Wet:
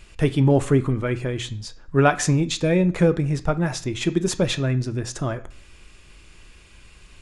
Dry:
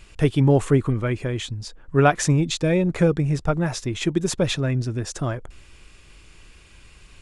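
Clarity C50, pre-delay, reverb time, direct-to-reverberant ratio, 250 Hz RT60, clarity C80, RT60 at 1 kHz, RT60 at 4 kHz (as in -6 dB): 17.0 dB, 3 ms, 0.45 s, 10.5 dB, 0.55 s, 21.5 dB, 0.45 s, 0.45 s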